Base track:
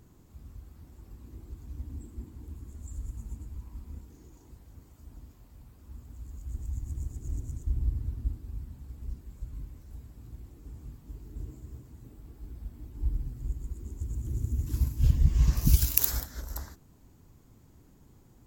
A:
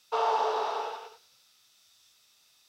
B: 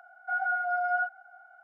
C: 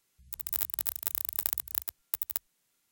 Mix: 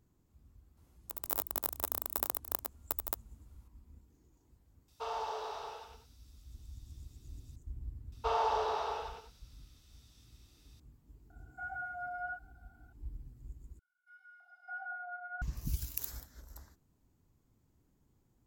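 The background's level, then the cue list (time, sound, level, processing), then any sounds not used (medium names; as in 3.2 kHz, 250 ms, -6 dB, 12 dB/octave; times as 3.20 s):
base track -14.5 dB
0.77 s: add C -4.5 dB + high-order bell 540 Hz +13.5 dB 2.8 oct
4.88 s: add A -12 dB + treble shelf 4.9 kHz +9 dB
8.12 s: add A -4.5 dB
11.30 s: add B -12.5 dB
13.79 s: replace with B -12 dB + three bands offset in time highs, mids, lows 610/710 ms, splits 620/2200 Hz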